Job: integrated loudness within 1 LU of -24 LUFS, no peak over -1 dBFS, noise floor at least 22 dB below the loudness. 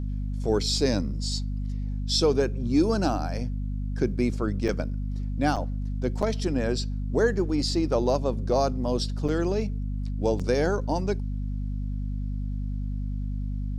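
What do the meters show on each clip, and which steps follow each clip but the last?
dropouts 5; longest dropout 6.4 ms; hum 50 Hz; highest harmonic 250 Hz; hum level -27 dBFS; loudness -27.5 LUFS; peak level -10.5 dBFS; loudness target -24.0 LUFS
-> interpolate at 4.68/5.56/6.22/9.28/10.39 s, 6.4 ms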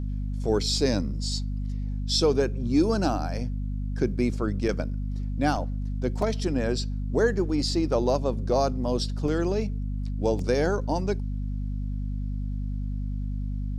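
dropouts 0; hum 50 Hz; highest harmonic 250 Hz; hum level -27 dBFS
-> de-hum 50 Hz, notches 5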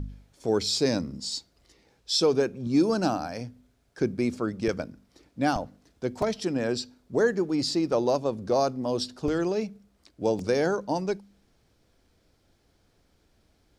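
hum not found; loudness -27.5 LUFS; peak level -12.5 dBFS; loudness target -24.0 LUFS
-> trim +3.5 dB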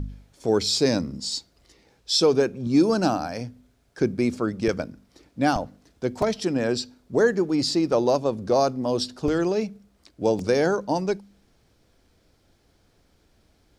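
loudness -24.0 LUFS; peak level -9.0 dBFS; noise floor -64 dBFS

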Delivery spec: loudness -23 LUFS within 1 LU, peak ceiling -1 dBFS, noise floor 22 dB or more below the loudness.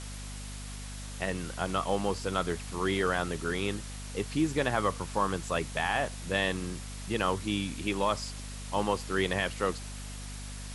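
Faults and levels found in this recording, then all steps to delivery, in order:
hum 50 Hz; highest harmonic 250 Hz; hum level -39 dBFS; noise floor -41 dBFS; noise floor target -54 dBFS; loudness -32.0 LUFS; peak level -13.0 dBFS; loudness target -23.0 LUFS
-> de-hum 50 Hz, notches 5; noise print and reduce 13 dB; trim +9 dB

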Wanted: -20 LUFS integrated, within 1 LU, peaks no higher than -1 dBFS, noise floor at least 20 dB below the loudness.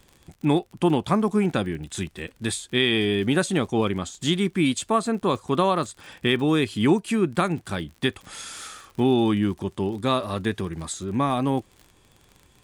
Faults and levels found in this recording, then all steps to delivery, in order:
tick rate 46 per s; loudness -24.0 LUFS; peak level -8.5 dBFS; loudness target -20.0 LUFS
-> de-click; trim +4 dB

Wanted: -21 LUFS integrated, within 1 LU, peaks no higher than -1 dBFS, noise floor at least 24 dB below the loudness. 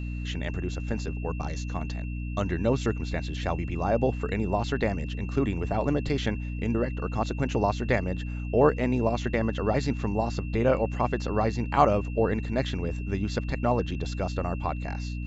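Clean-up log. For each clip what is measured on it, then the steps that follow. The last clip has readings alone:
hum 60 Hz; highest harmonic 300 Hz; hum level -30 dBFS; steady tone 2.7 kHz; tone level -46 dBFS; loudness -28.0 LUFS; peak level -7.0 dBFS; loudness target -21.0 LUFS
-> hum notches 60/120/180/240/300 Hz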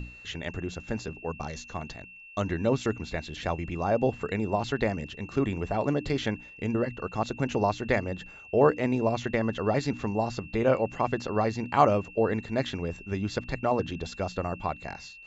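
hum not found; steady tone 2.7 kHz; tone level -46 dBFS
-> band-stop 2.7 kHz, Q 30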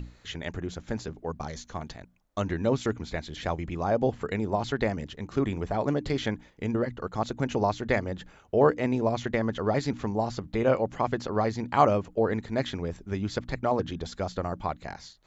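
steady tone not found; loudness -29.0 LUFS; peak level -8.0 dBFS; loudness target -21.0 LUFS
-> trim +8 dB; peak limiter -1 dBFS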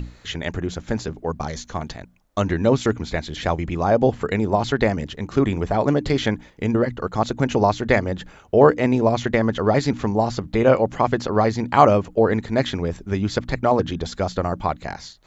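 loudness -21.5 LUFS; peak level -1.0 dBFS; noise floor -50 dBFS

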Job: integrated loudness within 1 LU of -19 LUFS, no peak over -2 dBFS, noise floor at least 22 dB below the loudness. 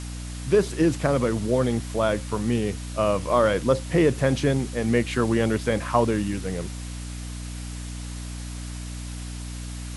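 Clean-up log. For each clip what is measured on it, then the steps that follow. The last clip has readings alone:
hum 60 Hz; highest harmonic 300 Hz; hum level -32 dBFS; noise floor -34 dBFS; noise floor target -46 dBFS; loudness -23.5 LUFS; peak level -7.0 dBFS; loudness target -19.0 LUFS
-> hum notches 60/120/180/240/300 Hz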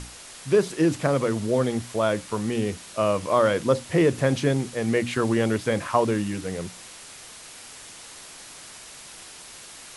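hum not found; noise floor -44 dBFS; noise floor target -46 dBFS
-> noise reduction 6 dB, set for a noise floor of -44 dBFS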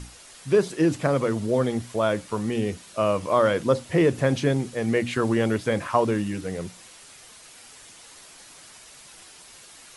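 noise floor -48 dBFS; loudness -24.0 LUFS; peak level -7.5 dBFS; loudness target -19.0 LUFS
-> trim +5 dB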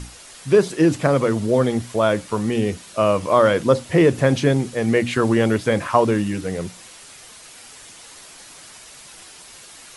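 loudness -19.0 LUFS; peak level -2.5 dBFS; noise floor -43 dBFS

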